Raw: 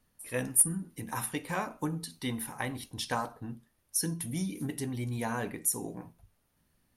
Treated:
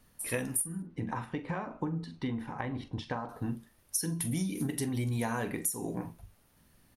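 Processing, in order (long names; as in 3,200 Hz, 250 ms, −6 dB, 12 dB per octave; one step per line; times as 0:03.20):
downward compressor 16 to 1, threshold −37 dBFS, peak gain reduction 20 dB
0:00.82–0:03.29: head-to-tape spacing loss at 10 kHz 32 dB
double-tracking delay 43 ms −13.5 dB
level +8 dB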